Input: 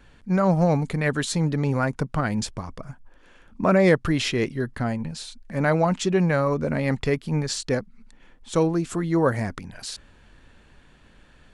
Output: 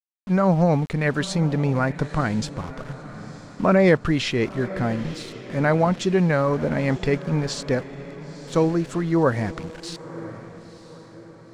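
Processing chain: small samples zeroed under -37.5 dBFS; distance through air 62 m; echo that smears into a reverb 975 ms, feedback 43%, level -15 dB; trim +1.5 dB

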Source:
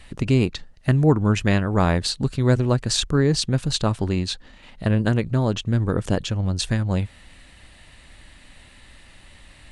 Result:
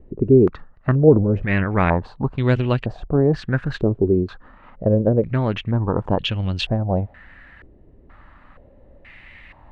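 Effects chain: 1.08–1.64 s: transient shaper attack -11 dB, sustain +6 dB; step-sequenced low-pass 2.1 Hz 400–2900 Hz

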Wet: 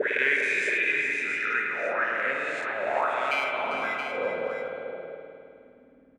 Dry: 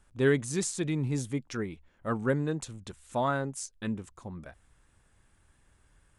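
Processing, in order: reverse spectral sustain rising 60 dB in 1.20 s; graphic EQ 250/500/2000 Hz +5/+8/+9 dB; in parallel at -6 dB: saturation -17.5 dBFS, distortion -11 dB; 0.53–2.15 s: on the sum: comb of notches 1.1 kHz; 3.31–4.16 s: sample-rate reducer 1.8 kHz, jitter 0%; auto-wah 250–2400 Hz, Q 6.5, up, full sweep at -17.5 dBFS; multi-tap echo 397/674 ms -10/-8 dB; on a send at -1 dB: reverberation RT60 2.5 s, pre-delay 52 ms; on the sum: trim +7.5 dB

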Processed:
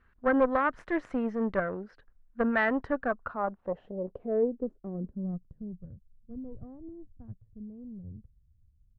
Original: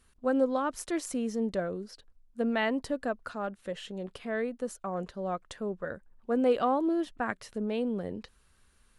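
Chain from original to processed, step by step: bass shelf 170 Hz +4 dB; Chebyshev shaper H 2 -13 dB, 5 -19 dB, 6 -23 dB, 7 -19 dB, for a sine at -14.5 dBFS; dynamic bell 2.3 kHz, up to -4 dB, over -48 dBFS, Q 3; low-pass sweep 1.7 kHz -> 110 Hz, 2.84–6.03 s

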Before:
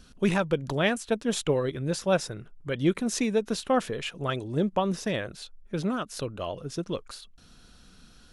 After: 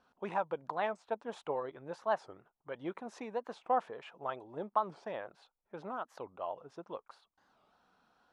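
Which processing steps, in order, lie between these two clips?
band-pass filter 860 Hz, Q 3.1; warped record 45 rpm, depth 250 cents; trim +1 dB

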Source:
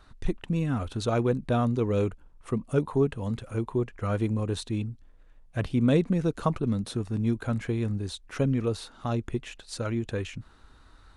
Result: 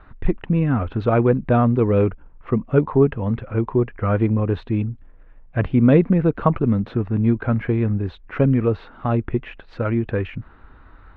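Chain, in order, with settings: low-pass 2.4 kHz 24 dB/octave; trim +8.5 dB

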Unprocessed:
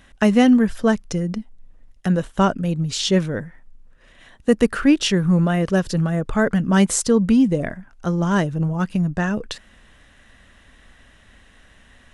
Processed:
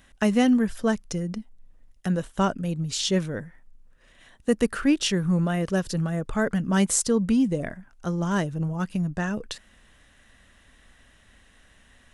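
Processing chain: treble shelf 6.6 kHz +7.5 dB; trim -6 dB

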